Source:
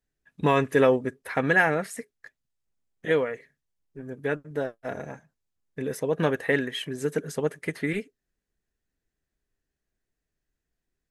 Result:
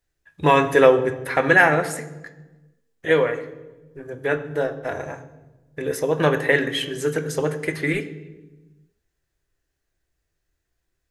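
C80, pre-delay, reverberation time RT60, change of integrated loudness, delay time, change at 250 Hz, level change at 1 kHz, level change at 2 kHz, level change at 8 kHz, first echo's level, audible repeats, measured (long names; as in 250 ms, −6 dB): 14.5 dB, 3 ms, 1.2 s, +6.0 dB, no echo audible, +3.5 dB, +7.5 dB, +6.5 dB, +7.0 dB, no echo audible, no echo audible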